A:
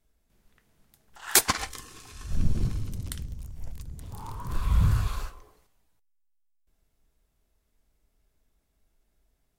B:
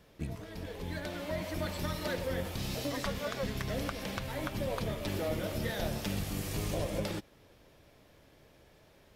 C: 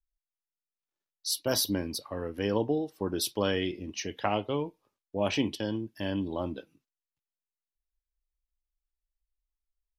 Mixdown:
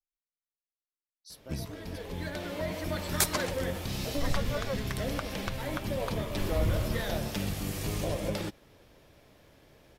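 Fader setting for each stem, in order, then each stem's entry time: −7.5, +2.0, −18.5 decibels; 1.85, 1.30, 0.00 seconds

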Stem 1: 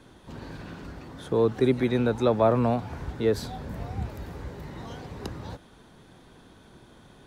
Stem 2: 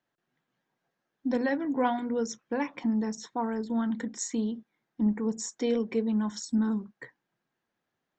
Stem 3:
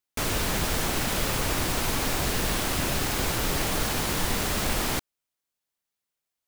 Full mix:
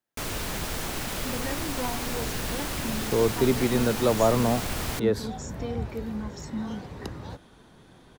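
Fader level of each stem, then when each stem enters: −0.5, −6.5, −5.0 decibels; 1.80, 0.00, 0.00 seconds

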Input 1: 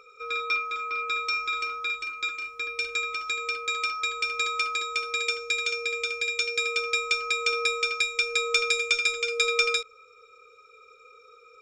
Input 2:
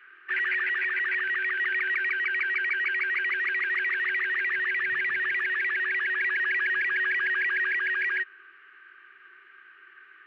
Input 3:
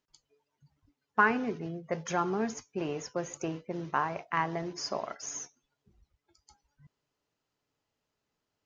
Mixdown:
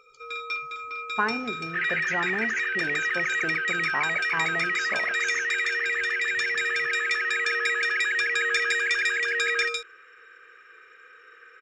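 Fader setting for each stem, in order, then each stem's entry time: −4.5, 0.0, −1.5 decibels; 0.00, 1.45, 0.00 seconds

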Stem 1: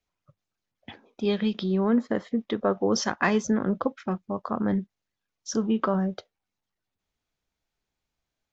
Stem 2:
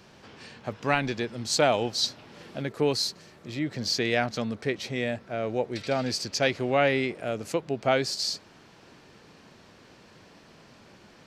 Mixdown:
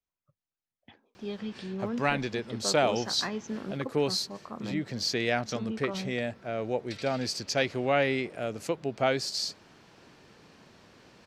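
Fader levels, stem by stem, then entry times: −11.5, −2.5 decibels; 0.00, 1.15 seconds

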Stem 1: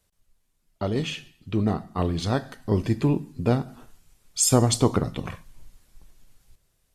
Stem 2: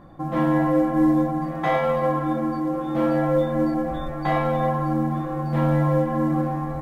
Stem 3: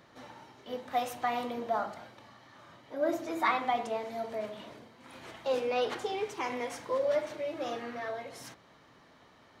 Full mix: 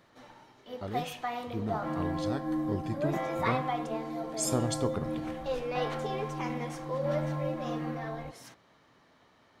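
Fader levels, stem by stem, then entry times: −11.5, −13.5, −3.5 decibels; 0.00, 1.50, 0.00 seconds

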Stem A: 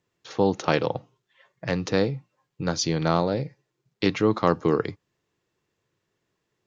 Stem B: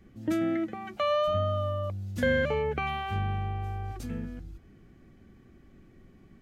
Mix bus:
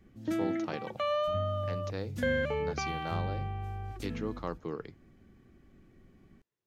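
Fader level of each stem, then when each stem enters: −16.0, −4.0 decibels; 0.00, 0.00 seconds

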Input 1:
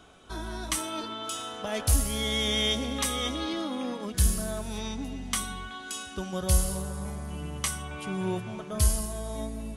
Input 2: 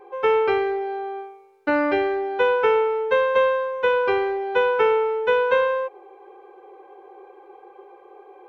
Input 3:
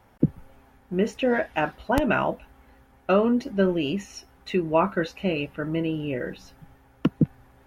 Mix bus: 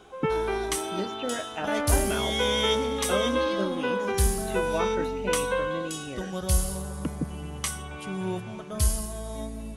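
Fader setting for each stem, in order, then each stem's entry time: −0.5, −8.5, −9.5 decibels; 0.00, 0.00, 0.00 seconds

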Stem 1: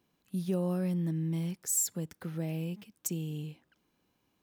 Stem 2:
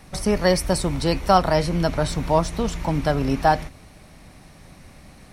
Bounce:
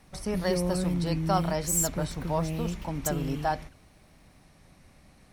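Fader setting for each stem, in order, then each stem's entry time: +2.5, −10.5 decibels; 0.00, 0.00 seconds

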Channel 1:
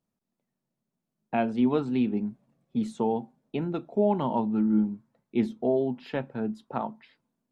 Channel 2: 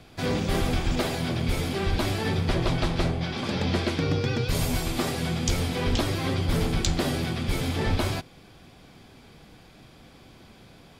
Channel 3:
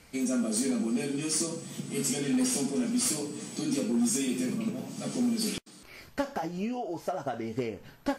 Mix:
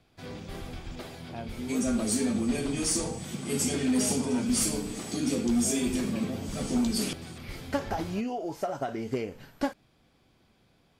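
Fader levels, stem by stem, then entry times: −14.5, −14.5, +1.0 decibels; 0.00, 0.00, 1.55 seconds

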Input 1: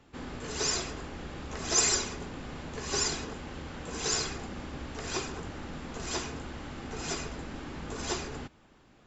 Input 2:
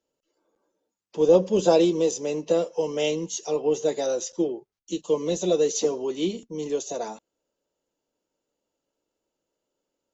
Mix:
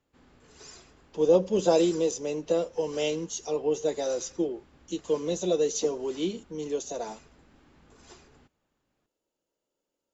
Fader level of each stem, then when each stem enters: −18.5, −3.5 decibels; 0.00, 0.00 seconds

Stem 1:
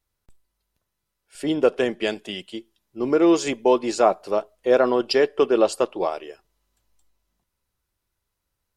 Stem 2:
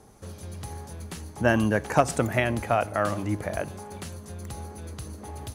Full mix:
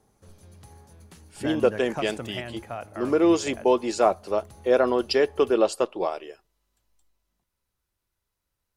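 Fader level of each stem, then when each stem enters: −2.5, −11.5 decibels; 0.00, 0.00 seconds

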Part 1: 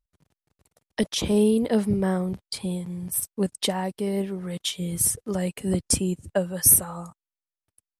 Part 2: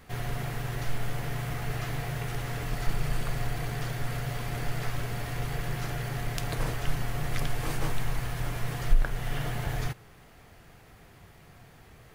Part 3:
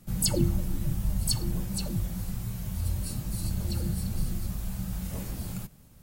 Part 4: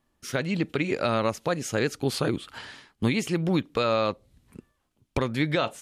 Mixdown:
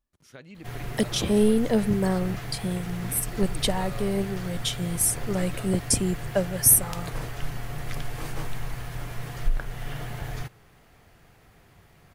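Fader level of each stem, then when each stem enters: −0.5, −2.5, −17.5, −18.5 decibels; 0.00, 0.55, 0.75, 0.00 seconds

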